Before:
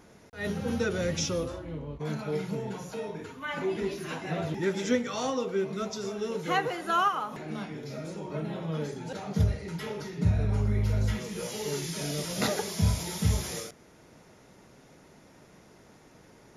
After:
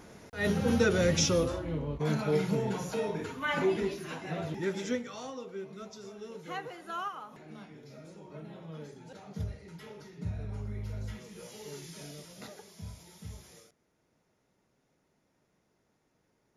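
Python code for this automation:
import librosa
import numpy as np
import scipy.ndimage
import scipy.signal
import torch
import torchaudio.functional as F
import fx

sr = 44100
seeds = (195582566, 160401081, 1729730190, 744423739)

y = fx.gain(x, sr, db=fx.line((3.63, 3.5), (4.03, -4.0), (4.78, -4.0), (5.27, -11.5), (12.01, -11.5), (12.47, -19.0)))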